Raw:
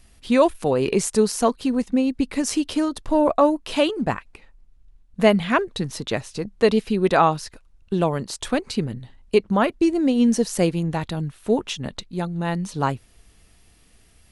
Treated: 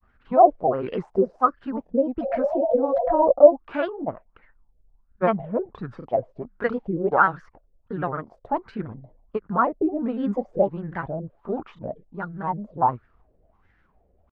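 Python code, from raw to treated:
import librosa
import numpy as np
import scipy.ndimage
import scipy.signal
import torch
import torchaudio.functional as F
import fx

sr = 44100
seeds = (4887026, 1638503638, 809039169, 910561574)

y = fx.filter_lfo_lowpass(x, sr, shape='sine', hz=1.4, low_hz=540.0, high_hz=1600.0, q=7.4)
y = fx.spec_repair(y, sr, seeds[0], start_s=2.27, length_s=0.92, low_hz=350.0, high_hz=850.0, source='after')
y = fx.granulator(y, sr, seeds[1], grain_ms=100.0, per_s=20.0, spray_ms=24.0, spread_st=3)
y = F.gain(torch.from_numpy(y), -7.0).numpy()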